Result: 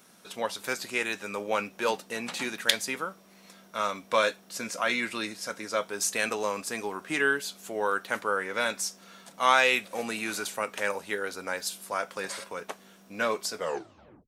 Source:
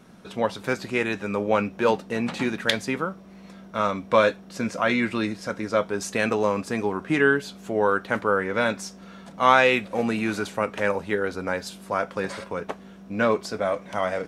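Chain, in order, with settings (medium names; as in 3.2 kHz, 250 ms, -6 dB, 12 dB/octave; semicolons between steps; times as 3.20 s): tape stop on the ending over 0.72 s; RIAA curve recording; trim -5 dB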